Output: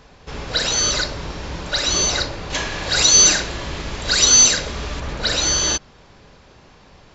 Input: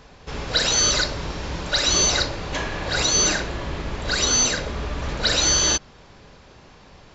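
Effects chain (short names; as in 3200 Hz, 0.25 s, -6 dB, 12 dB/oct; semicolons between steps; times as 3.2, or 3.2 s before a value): 2.5–5 high shelf 2800 Hz +10.5 dB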